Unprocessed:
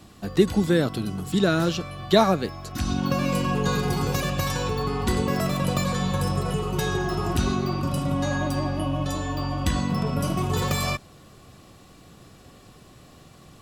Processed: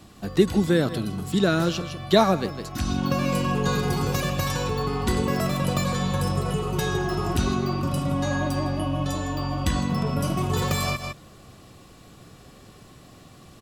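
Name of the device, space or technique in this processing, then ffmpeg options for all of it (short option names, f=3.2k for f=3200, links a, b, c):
ducked delay: -filter_complex "[0:a]asplit=3[a][b][c];[b]adelay=158,volume=-5.5dB[d];[c]apad=whole_len=607338[e];[d][e]sidechaincompress=threshold=-36dB:ratio=8:attack=25:release=117[f];[a][f]amix=inputs=2:normalize=0"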